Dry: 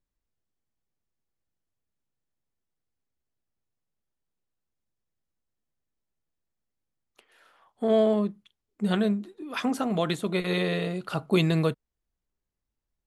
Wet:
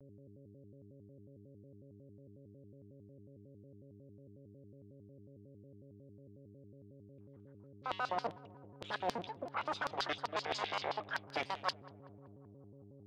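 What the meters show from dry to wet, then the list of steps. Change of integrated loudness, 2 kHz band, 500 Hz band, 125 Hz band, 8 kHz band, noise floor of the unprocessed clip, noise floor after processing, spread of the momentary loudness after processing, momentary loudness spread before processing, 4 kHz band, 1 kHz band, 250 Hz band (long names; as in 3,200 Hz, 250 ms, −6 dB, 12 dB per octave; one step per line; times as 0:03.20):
−12.5 dB, −6.0 dB, −16.0 dB, −20.0 dB, can't be measured, −85 dBFS, −58 dBFS, 20 LU, 10 LU, −7.0 dB, −2.5 dB, −23.0 dB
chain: lower of the sound and its delayed copy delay 0.68 ms
low-pass that shuts in the quiet parts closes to 480 Hz, open at −23.5 dBFS
high-frequency loss of the air 200 metres
noise gate −51 dBFS, range −9 dB
auto-filter high-pass square 7.7 Hz 740–4,000 Hz
reversed playback
downward compressor 12 to 1, threshold −43 dBFS, peak gain reduction 21 dB
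reversed playback
high-shelf EQ 5,500 Hz +7 dB
feedback echo with a low-pass in the loop 192 ms, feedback 74%, low-pass 1,200 Hz, level −19.5 dB
hum with harmonics 120 Hz, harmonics 4, −66 dBFS −3 dB per octave
pitch modulation by a square or saw wave square 5.5 Hz, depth 250 cents
level +9 dB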